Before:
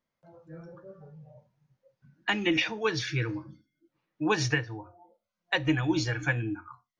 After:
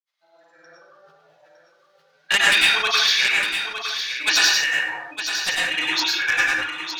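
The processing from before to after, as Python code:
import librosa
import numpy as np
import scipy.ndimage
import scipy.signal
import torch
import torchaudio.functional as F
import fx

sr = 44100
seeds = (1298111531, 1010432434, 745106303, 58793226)

p1 = scipy.signal.sosfilt(scipy.signal.butter(2, 1100.0, 'highpass', fs=sr, output='sos'), x)
p2 = fx.peak_eq(p1, sr, hz=3800.0, db=12.5, octaves=1.4)
p3 = np.clip(p2, -10.0 ** (-18.0 / 20.0), 10.0 ** (-18.0 / 20.0))
p4 = p2 + (p3 * librosa.db_to_amplitude(-11.5))
p5 = fx.wow_flutter(p4, sr, seeds[0], rate_hz=2.1, depth_cents=28.0)
p6 = 10.0 ** (-15.0 / 20.0) * (np.abs((p5 / 10.0 ** (-15.0 / 20.0) + 3.0) % 4.0 - 2.0) - 1.0)
p7 = fx.granulator(p6, sr, seeds[1], grain_ms=100.0, per_s=20.0, spray_ms=100.0, spread_st=0)
p8 = fx.tremolo_random(p7, sr, seeds[2], hz=1.8, depth_pct=55)
p9 = p8 + fx.echo_single(p8, sr, ms=909, db=-8.5, dry=0)
p10 = fx.rev_plate(p9, sr, seeds[3], rt60_s=0.61, hf_ratio=0.55, predelay_ms=85, drr_db=-4.5)
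p11 = fx.sustainer(p10, sr, db_per_s=55.0)
y = p11 * librosa.db_to_amplitude(7.0)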